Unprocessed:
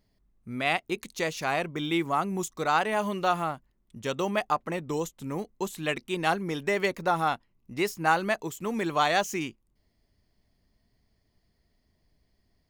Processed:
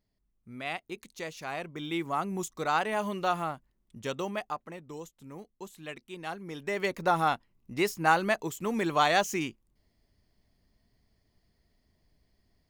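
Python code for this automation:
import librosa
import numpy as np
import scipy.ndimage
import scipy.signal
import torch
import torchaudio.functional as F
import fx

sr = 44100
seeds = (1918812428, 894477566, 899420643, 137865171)

y = fx.gain(x, sr, db=fx.line((1.45, -9.0), (2.3, -3.0), (4.07, -3.0), (4.77, -12.0), (6.31, -12.0), (7.06, 0.0)))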